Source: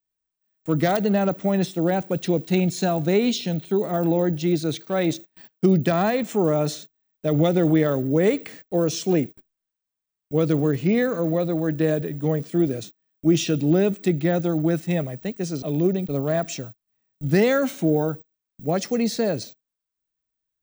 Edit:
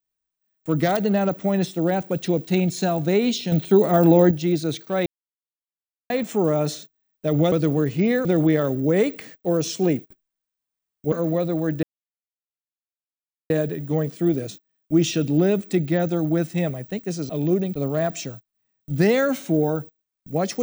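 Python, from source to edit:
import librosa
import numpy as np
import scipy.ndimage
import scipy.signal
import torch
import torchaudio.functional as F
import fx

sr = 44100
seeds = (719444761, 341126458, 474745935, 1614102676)

y = fx.edit(x, sr, fx.clip_gain(start_s=3.52, length_s=0.79, db=6.5),
    fx.silence(start_s=5.06, length_s=1.04),
    fx.move(start_s=10.39, length_s=0.73, to_s=7.52),
    fx.insert_silence(at_s=11.83, length_s=1.67), tone=tone)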